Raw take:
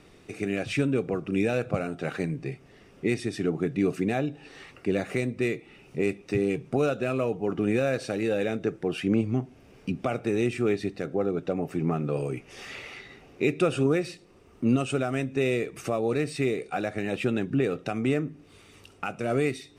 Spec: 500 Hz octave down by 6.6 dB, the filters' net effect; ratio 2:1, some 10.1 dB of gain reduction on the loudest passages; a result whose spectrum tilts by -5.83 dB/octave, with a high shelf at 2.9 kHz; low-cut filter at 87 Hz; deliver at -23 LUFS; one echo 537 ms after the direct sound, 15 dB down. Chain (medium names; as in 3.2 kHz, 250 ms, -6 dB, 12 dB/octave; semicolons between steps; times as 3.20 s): high-pass 87 Hz; peaking EQ 500 Hz -8.5 dB; treble shelf 2.9 kHz -4 dB; compression 2:1, threshold -40 dBFS; delay 537 ms -15 dB; trim +16.5 dB